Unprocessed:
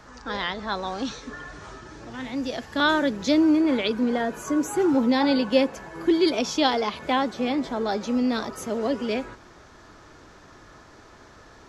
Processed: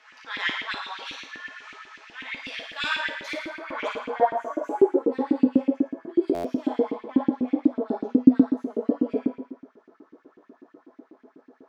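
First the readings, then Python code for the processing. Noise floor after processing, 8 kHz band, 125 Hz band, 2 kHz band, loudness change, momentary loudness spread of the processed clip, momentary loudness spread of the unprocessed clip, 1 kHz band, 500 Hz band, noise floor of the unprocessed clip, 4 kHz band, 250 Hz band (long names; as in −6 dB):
−63 dBFS, below −10 dB, −2.0 dB, −1.5 dB, −1.5 dB, 17 LU, 15 LU, −3.5 dB, −1.5 dB, −50 dBFS, −5.5 dB, −0.5 dB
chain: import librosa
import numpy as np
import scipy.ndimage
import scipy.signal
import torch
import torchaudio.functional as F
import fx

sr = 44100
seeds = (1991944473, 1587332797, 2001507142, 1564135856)

p1 = fx.tracing_dist(x, sr, depth_ms=0.07)
p2 = fx.high_shelf(p1, sr, hz=7700.0, db=6.5)
p3 = fx.over_compress(p2, sr, threshold_db=-24.0, ratio=-1.0)
p4 = p2 + (p3 * librosa.db_to_amplitude(-2.0))
p5 = fx.filter_sweep_bandpass(p4, sr, from_hz=2500.0, to_hz=250.0, start_s=3.0, end_s=5.49, q=2.4)
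p6 = p5 + fx.room_flutter(p5, sr, wall_m=9.5, rt60_s=0.84, dry=0)
p7 = fx.room_shoebox(p6, sr, seeds[0], volume_m3=210.0, walls='furnished', distance_m=1.5)
p8 = fx.filter_lfo_highpass(p7, sr, shape='saw_up', hz=8.1, low_hz=260.0, high_hz=2800.0, q=2.8)
p9 = fx.buffer_glitch(p8, sr, at_s=(6.34,), block=512, repeats=8)
y = p9 * librosa.db_to_amplitude(-5.5)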